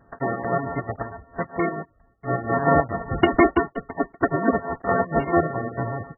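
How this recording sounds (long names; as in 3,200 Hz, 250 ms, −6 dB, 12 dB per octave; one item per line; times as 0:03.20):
a buzz of ramps at a fixed pitch in blocks of 64 samples
chopped level 4.5 Hz, depth 60%, duty 60%
aliases and images of a low sample rate 2,500 Hz, jitter 0%
MP3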